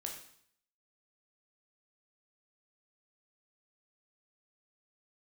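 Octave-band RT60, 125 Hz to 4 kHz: 0.70, 0.65, 0.60, 0.65, 0.65, 0.65 s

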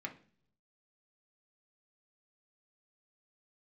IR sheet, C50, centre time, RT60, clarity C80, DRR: 13.5 dB, 9 ms, 0.45 s, 19.0 dB, 0.5 dB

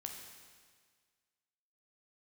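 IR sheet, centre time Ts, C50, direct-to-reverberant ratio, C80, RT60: 53 ms, 4.0 dB, 1.5 dB, 5.5 dB, 1.7 s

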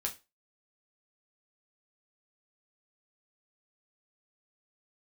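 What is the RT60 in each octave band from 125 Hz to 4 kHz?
0.25, 0.25, 0.25, 0.25, 0.25, 0.25 s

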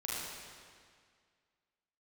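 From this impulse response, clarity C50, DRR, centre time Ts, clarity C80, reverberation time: -3.5 dB, -7.5 dB, 0.141 s, -1.0 dB, 2.0 s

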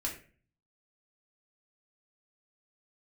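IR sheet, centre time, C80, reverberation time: 22 ms, 12.5 dB, 0.40 s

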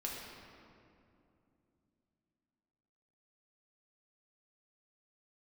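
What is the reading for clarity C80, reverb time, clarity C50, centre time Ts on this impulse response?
1.5 dB, 2.7 s, 0.0 dB, 0.113 s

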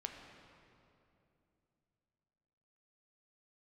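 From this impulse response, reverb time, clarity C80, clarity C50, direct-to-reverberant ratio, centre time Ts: 2.8 s, 5.0 dB, 4.0 dB, 2.5 dB, 68 ms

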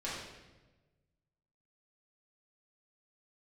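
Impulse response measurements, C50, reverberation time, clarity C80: 0.0 dB, 1.2 s, 3.0 dB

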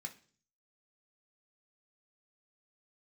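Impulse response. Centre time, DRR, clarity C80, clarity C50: 8 ms, 2.0 dB, 20.0 dB, 14.5 dB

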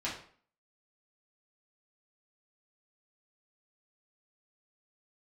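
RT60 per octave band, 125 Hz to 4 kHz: 0.45, 0.55, 0.50, 0.50, 0.45, 0.40 s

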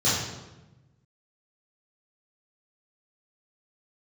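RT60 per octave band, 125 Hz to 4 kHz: 1.7, 1.4, 1.1, 1.0, 0.90, 0.80 s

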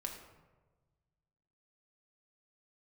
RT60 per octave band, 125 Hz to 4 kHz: 2.1, 1.5, 1.4, 1.2, 0.90, 0.60 s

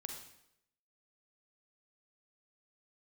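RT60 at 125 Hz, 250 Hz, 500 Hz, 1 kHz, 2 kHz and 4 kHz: 0.80, 0.80, 0.85, 0.75, 0.75, 0.70 s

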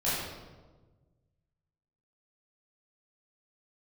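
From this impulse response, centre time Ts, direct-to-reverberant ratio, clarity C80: 89 ms, -11.0 dB, 1.5 dB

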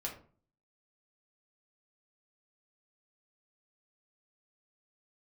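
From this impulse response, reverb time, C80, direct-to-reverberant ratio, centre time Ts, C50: 0.45 s, 13.5 dB, -2.5 dB, 21 ms, 8.5 dB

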